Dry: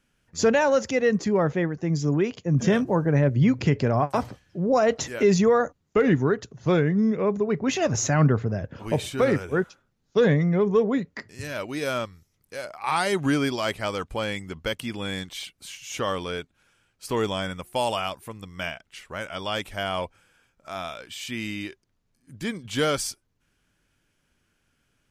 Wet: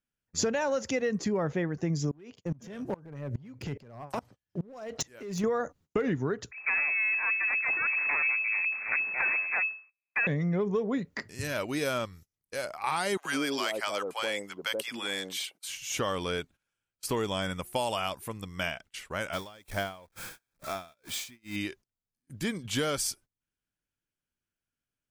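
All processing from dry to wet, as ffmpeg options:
ffmpeg -i in.wav -filter_complex "[0:a]asettb=1/sr,asplit=3[link_01][link_02][link_03];[link_01]atrim=end=2.114[link_04];[link_02]atrim=start=2.11:end=5.44,asetpts=PTS-STARTPTS,afade=type=in:duration=0.004:curve=qsin,afade=type=out:start_time=3.326:duration=0.004:curve=qsin,acompressor=threshold=-24dB:ratio=12:attack=3.2:release=140:knee=1:detection=peak,asoftclip=type=hard:threshold=-23.5dB,aeval=exprs='val(0)*pow(10,-26*if(lt(mod(-2.4*n/s,1),2*abs(-2.4)/1000),1-mod(-2.4*n/s,1)/(2*abs(-2.4)/1000),(mod(-2.4*n/s,1)-2*abs(-2.4)/1000)/(1-2*abs(-2.4)/1000))/20)':channel_layout=same[link_05];[link_03]atrim=start=5.436[link_06];[link_04][link_05]acrossfade=duration=0.004:curve1=hsin:curve2=qsin[link_07];[link_07][link_06]acrossfade=duration=0.004:curve1=qsin:curve2=hsin,asettb=1/sr,asplit=3[link_08][link_09][link_10];[link_08]atrim=end=6.514[link_11];[link_09]atrim=start=6.51:end=10.27,asetpts=PTS-STARTPTS,afade=type=in:duration=0.004:curve=qsin,afade=type=out:start_time=3.756:duration=0.004:curve=qsin,equalizer=frequency=85:width_type=o:width=0.29:gain=12.5,aeval=exprs='abs(val(0))':channel_layout=same,lowpass=frequency=2200:width_type=q:width=0.5098,lowpass=frequency=2200:width_type=q:width=0.6013,lowpass=frequency=2200:width_type=q:width=0.9,lowpass=frequency=2200:width_type=q:width=2.563,afreqshift=-2600[link_12];[link_10]atrim=start=10.266[link_13];[link_11][link_12]acrossfade=duration=0.004:curve1=hsin:curve2=qsin[link_14];[link_14][link_13]acrossfade=duration=0.004:curve1=qsin:curve2=hsin,asettb=1/sr,asplit=3[link_15][link_16][link_17];[link_15]atrim=end=13.174[link_18];[link_16]atrim=start=13.17:end=15.69,asetpts=PTS-STARTPTS,afade=type=in:duration=0.004:curve=qsin,afade=type=out:start_time=2.516:duration=0.004:curve=qsin,highpass=390,acrossover=split=730[link_19][link_20];[link_19]adelay=80[link_21];[link_21][link_20]amix=inputs=2:normalize=0,atrim=end_sample=111132[link_22];[link_17]atrim=start=15.686[link_23];[link_18][link_22]acrossfade=duration=0.004:curve1=hsin:curve2=qsin[link_24];[link_24][link_23]acrossfade=duration=0.004:curve1=qsin:curve2=hsin,asettb=1/sr,asplit=3[link_25][link_26][link_27];[link_25]atrim=end=19.334[link_28];[link_26]atrim=start=19.33:end=21.56,asetpts=PTS-STARTPTS,afade=type=in:duration=0.004:curve=qsin,afade=type=out:start_time=2.226:duration=0.004:curve=qsin,aeval=exprs='val(0)+0.5*0.0158*sgn(val(0))':channel_layout=same,bandreject=frequency=2900:width=7,aeval=exprs='val(0)*pow(10,-25*(0.5-0.5*cos(2*PI*2.2*n/s))/20)':channel_layout=same[link_29];[link_27]atrim=start=21.556[link_30];[link_28][link_29]acrossfade=duration=0.004:curve1=hsin:curve2=qsin[link_31];[link_31][link_30]acrossfade=duration=0.004:curve1=qsin:curve2=hsin,agate=range=-22dB:threshold=-49dB:ratio=16:detection=peak,highshelf=frequency=8600:gain=6.5,acompressor=threshold=-26dB:ratio=6" out.wav

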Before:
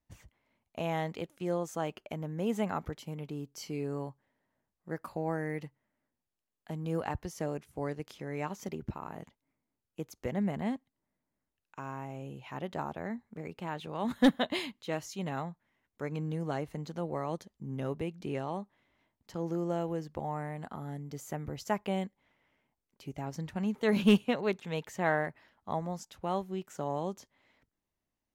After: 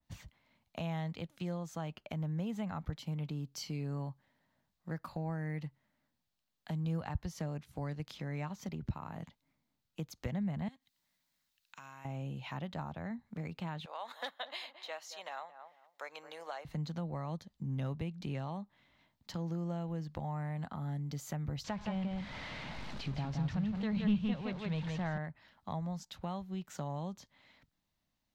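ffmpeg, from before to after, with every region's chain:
ffmpeg -i in.wav -filter_complex "[0:a]asettb=1/sr,asplit=3[link_01][link_02][link_03];[link_01]atrim=end=10.684[link_04];[link_02]atrim=start=10.68:end=12.05,asetpts=PTS-STARTPTS,afade=type=in:duration=0.004:curve=qsin,afade=type=out:start_time=1.366:duration=0.004:curve=qsin,tiltshelf=frequency=1200:gain=-9.5,acompressor=threshold=-56dB:ratio=2.5:attack=3.2:release=140:knee=1:detection=peak[link_05];[link_03]atrim=start=12.046[link_06];[link_04][link_05]acrossfade=duration=0.004:curve1=hsin:curve2=qsin[link_07];[link_07][link_06]acrossfade=duration=0.004:curve1=qsin:curve2=hsin,asettb=1/sr,asplit=3[link_08][link_09][link_10];[link_08]atrim=end=13.854[link_11];[link_09]atrim=start=13.85:end=16.65,asetpts=PTS-STARTPTS,afade=type=in:duration=0.004:curve=qsin,afade=type=out:start_time=2.796:duration=0.004:curve=qsin,highpass=frequency=560:width=0.5412,highpass=frequency=560:width=1.3066,asplit=2[link_12][link_13];[link_13]adelay=221,lowpass=frequency=1100:poles=1,volume=-13.5dB,asplit=2[link_14][link_15];[link_15]adelay=221,lowpass=frequency=1100:poles=1,volume=0.25,asplit=2[link_16][link_17];[link_17]adelay=221,lowpass=frequency=1100:poles=1,volume=0.25[link_18];[link_12][link_14][link_16][link_18]amix=inputs=4:normalize=0,atrim=end_sample=123480[link_19];[link_10]atrim=start=16.646[link_20];[link_11][link_19]acrossfade=duration=0.004:curve1=hsin:curve2=qsin[link_21];[link_21][link_20]acrossfade=duration=0.004:curve1=qsin:curve2=hsin,asettb=1/sr,asplit=3[link_22][link_23][link_24];[link_22]atrim=end=21.644[link_25];[link_23]atrim=start=21.64:end=25.18,asetpts=PTS-STARTPTS,afade=type=in:duration=0.004:curve=qsin,afade=type=out:start_time=3.536:duration=0.004:curve=qsin,aeval=exprs='val(0)+0.5*0.0112*sgn(val(0))':channel_layout=same,lowpass=4600,aecho=1:1:169:0.631,atrim=end_sample=156114[link_26];[link_24]atrim=start=25.176[link_27];[link_25][link_26]acrossfade=duration=0.004:curve1=hsin:curve2=qsin[link_28];[link_28][link_27]acrossfade=duration=0.004:curve1=qsin:curve2=hsin,equalizer=frequency=160:width_type=o:width=0.67:gain=4,equalizer=frequency=400:width_type=o:width=0.67:gain=-8,equalizer=frequency=4000:width_type=o:width=0.67:gain=7,equalizer=frequency=10000:width_type=o:width=0.67:gain=-5,acrossover=split=130[link_29][link_30];[link_30]acompressor=threshold=-45dB:ratio=3[link_31];[link_29][link_31]amix=inputs=2:normalize=0,adynamicequalizer=threshold=0.00112:dfrequency=2500:dqfactor=0.7:tfrequency=2500:tqfactor=0.7:attack=5:release=100:ratio=0.375:range=2:mode=cutabove:tftype=highshelf,volume=3.5dB" out.wav

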